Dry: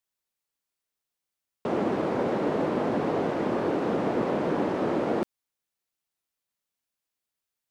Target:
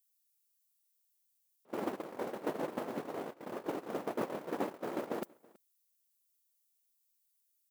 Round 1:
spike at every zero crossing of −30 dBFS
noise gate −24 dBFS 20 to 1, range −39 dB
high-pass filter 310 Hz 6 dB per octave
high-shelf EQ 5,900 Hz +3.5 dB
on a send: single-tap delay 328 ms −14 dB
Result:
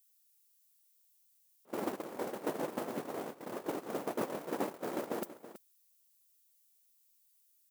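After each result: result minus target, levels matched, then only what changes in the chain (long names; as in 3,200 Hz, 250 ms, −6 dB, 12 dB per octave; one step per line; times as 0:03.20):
echo-to-direct +11 dB; spike at every zero crossing: distortion +7 dB
change: single-tap delay 328 ms −25 dB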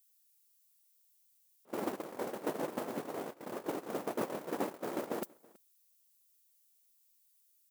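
spike at every zero crossing: distortion +7 dB
change: spike at every zero crossing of −37 dBFS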